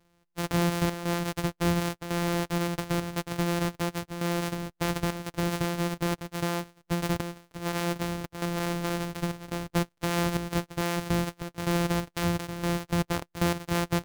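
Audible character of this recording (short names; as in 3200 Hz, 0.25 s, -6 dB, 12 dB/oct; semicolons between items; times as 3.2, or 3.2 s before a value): a buzz of ramps at a fixed pitch in blocks of 256 samples; chopped level 0.95 Hz, depth 65%, duty 85%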